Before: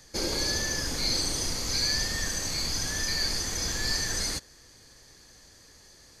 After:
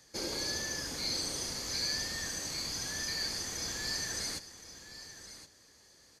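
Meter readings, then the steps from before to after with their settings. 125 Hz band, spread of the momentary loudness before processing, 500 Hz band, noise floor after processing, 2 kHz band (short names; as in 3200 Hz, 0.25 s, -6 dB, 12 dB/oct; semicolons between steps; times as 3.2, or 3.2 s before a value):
-10.5 dB, 3 LU, -6.5 dB, -62 dBFS, -6.5 dB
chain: HPF 120 Hz 6 dB/oct; echo 1.069 s -13 dB; gain -6.5 dB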